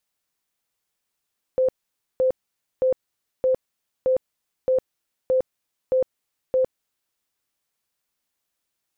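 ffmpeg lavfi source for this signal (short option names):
-f lavfi -i "aevalsrc='0.158*sin(2*PI*517*mod(t,0.62))*lt(mod(t,0.62),55/517)':d=5.58:s=44100"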